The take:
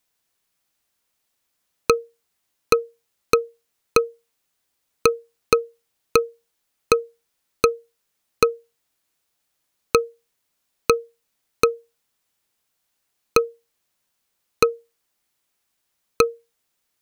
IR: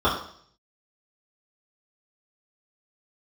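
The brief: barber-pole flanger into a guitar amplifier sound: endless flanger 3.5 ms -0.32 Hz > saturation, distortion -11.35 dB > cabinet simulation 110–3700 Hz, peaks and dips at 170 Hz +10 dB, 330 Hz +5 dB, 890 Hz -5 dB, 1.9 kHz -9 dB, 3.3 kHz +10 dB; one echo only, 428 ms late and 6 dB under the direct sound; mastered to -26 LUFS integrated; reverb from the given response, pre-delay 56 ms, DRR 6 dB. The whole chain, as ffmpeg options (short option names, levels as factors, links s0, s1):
-filter_complex "[0:a]aecho=1:1:428:0.501,asplit=2[s0][s1];[1:a]atrim=start_sample=2205,adelay=56[s2];[s1][s2]afir=irnorm=-1:irlink=0,volume=0.0596[s3];[s0][s3]amix=inputs=2:normalize=0,asplit=2[s4][s5];[s5]adelay=3.5,afreqshift=-0.32[s6];[s4][s6]amix=inputs=2:normalize=1,asoftclip=threshold=0.15,highpass=110,equalizer=f=170:t=q:w=4:g=10,equalizer=f=330:t=q:w=4:g=5,equalizer=f=890:t=q:w=4:g=-5,equalizer=f=1900:t=q:w=4:g=-9,equalizer=f=3300:t=q:w=4:g=10,lowpass=f=3700:w=0.5412,lowpass=f=3700:w=1.3066,volume=1.33"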